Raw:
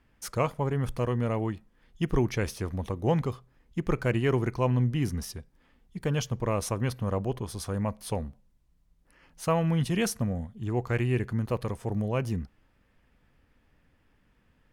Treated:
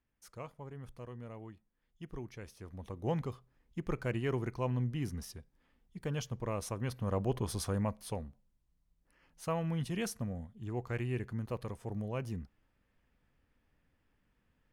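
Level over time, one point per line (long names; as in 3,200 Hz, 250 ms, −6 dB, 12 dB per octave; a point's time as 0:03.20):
0:02.50 −18.5 dB
0:03.07 −8.5 dB
0:06.80 −8.5 dB
0:07.51 +0.5 dB
0:08.24 −9 dB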